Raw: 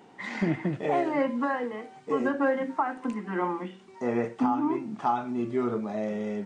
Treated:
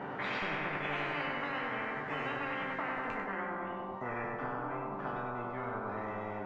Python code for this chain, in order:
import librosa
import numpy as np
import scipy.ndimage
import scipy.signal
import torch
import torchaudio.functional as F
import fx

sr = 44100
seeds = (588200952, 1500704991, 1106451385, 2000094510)

p1 = fx.resonator_bank(x, sr, root=43, chord='sus4', decay_s=0.27)
p2 = p1 + fx.echo_feedback(p1, sr, ms=97, feedback_pct=48, wet_db=-5.0, dry=0)
p3 = fx.filter_sweep_lowpass(p2, sr, from_hz=1500.0, to_hz=730.0, start_s=2.96, end_s=3.51, q=1.6)
y = fx.spectral_comp(p3, sr, ratio=10.0)